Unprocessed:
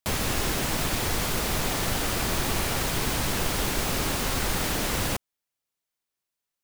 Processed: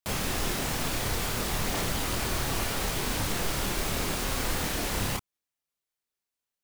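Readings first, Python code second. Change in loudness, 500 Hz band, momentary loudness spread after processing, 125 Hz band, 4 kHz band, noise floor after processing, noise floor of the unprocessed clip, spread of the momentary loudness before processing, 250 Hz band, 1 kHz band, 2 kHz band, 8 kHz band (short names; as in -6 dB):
-3.0 dB, -3.0 dB, 0 LU, -2.5 dB, -3.0 dB, under -85 dBFS, under -85 dBFS, 0 LU, -3.0 dB, -3.0 dB, -3.0 dB, -3.0 dB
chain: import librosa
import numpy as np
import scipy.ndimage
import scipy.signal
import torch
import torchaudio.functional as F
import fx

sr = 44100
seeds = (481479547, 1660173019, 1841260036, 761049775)

y = fx.chorus_voices(x, sr, voices=2, hz=1.4, base_ms=28, depth_ms=3.0, mix_pct=45)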